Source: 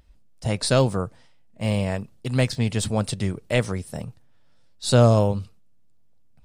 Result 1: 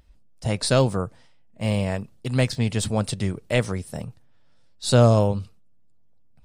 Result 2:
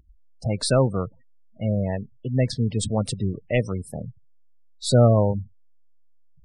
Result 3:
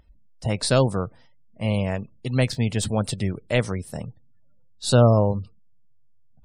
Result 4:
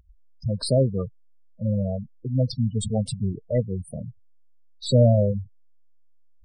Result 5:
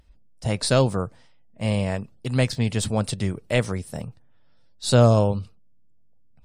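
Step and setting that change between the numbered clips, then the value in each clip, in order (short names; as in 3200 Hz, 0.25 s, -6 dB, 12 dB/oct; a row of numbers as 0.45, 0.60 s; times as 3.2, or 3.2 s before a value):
spectral gate, under each frame's peak: -60, -20, -35, -10, -50 dB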